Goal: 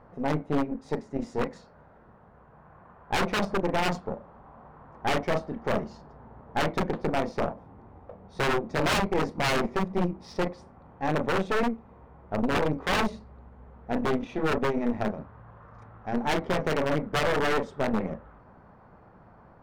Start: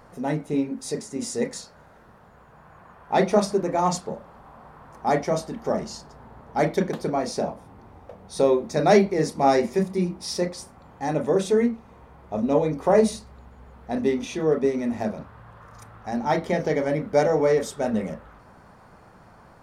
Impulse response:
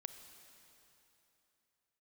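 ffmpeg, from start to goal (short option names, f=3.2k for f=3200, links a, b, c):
-af "adynamicsmooth=sensitivity=1:basefreq=1.9k,aeval=exprs='0.668*(cos(1*acos(clip(val(0)/0.668,-1,1)))-cos(1*PI/2))+0.0211*(cos(3*acos(clip(val(0)/0.668,-1,1)))-cos(3*PI/2))+0.106*(cos(8*acos(clip(val(0)/0.668,-1,1)))-cos(8*PI/2))':c=same,aeval=exprs='0.188*(abs(mod(val(0)/0.188+3,4)-2)-1)':c=same,volume=-1dB"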